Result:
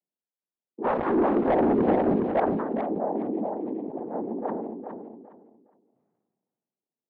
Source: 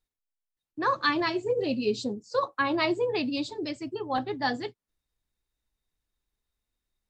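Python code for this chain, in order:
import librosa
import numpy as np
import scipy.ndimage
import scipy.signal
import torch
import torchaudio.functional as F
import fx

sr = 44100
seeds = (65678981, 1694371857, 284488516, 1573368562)

y = fx.noise_vocoder(x, sr, seeds[0], bands=6)
y = scipy.signal.sosfilt(scipy.signal.cheby1(2, 1.0, [210.0, 710.0], 'bandpass', fs=sr, output='sos'), y)
y = fx.leveller(y, sr, passes=3, at=(0.84, 2.4))
y = fx.air_absorb(y, sr, metres=440.0)
y = fx.echo_feedback(y, sr, ms=412, feedback_pct=18, wet_db=-8.0)
y = fx.sustainer(y, sr, db_per_s=33.0)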